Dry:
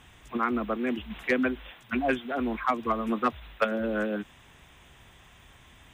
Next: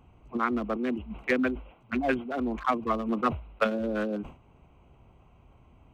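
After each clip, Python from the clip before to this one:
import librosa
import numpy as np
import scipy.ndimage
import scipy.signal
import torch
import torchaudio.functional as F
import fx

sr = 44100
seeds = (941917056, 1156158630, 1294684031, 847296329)

y = fx.wiener(x, sr, points=25)
y = fx.sustainer(y, sr, db_per_s=140.0)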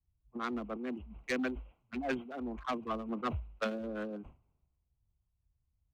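y = 10.0 ** (-21.5 / 20.0) * np.tanh(x / 10.0 ** (-21.5 / 20.0))
y = fx.band_widen(y, sr, depth_pct=100)
y = y * librosa.db_to_amplitude(-7.5)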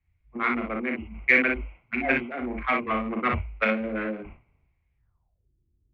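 y = fx.room_early_taps(x, sr, ms=(37, 59), db=(-5.5, -5.0))
y = fx.filter_sweep_lowpass(y, sr, from_hz=2200.0, to_hz=350.0, start_s=4.97, end_s=5.5, q=7.4)
y = y * librosa.db_to_amplitude(6.0)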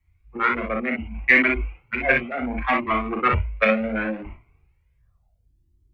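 y = fx.comb_cascade(x, sr, direction='rising', hz=0.69)
y = y * librosa.db_to_amplitude(9.0)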